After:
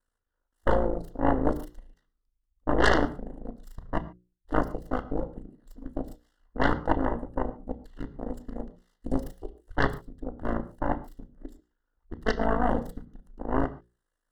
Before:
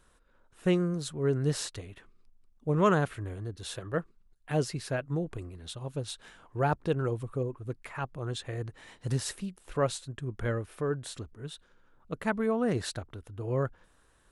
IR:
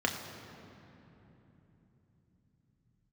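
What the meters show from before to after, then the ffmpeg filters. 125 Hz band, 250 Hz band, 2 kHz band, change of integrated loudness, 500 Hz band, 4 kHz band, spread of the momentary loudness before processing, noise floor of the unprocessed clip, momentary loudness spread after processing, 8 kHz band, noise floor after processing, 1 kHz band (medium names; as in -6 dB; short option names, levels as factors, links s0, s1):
-4.5 dB, +2.0 dB, +6.0 dB, +2.5 dB, +0.5 dB, -1.5 dB, 14 LU, -65 dBFS, 20 LU, under -10 dB, -82 dBFS, +5.5 dB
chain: -filter_complex "[0:a]aeval=exprs='abs(val(0))':c=same,afwtdn=0.0178,aeval=exprs='val(0)*sin(2*PI*27*n/s)':c=same,aeval=exprs='0.266*(cos(1*acos(clip(val(0)/0.266,-1,1)))-cos(1*PI/2))+0.0841*(cos(7*acos(clip(val(0)/0.266,-1,1)))-cos(7*PI/2))+0.119*(cos(8*acos(clip(val(0)/0.266,-1,1)))-cos(8*PI/2))':c=same,asuperstop=centerf=2400:order=12:qfactor=3.4,bandreject=f=60:t=h:w=6,bandreject=f=120:t=h:w=6,bandreject=f=180:t=h:w=6,bandreject=f=240:t=h:w=6,bandreject=f=300:t=h:w=6,bandreject=f=360:t=h:w=6,bandreject=f=420:t=h:w=6,bandreject=f=480:t=h:w=6,bandreject=f=540:t=h:w=6,asplit=2[s0][s1];[1:a]atrim=start_sample=2205,atrim=end_sample=6615[s2];[s1][s2]afir=irnorm=-1:irlink=0,volume=0.251[s3];[s0][s3]amix=inputs=2:normalize=0,volume=0.794"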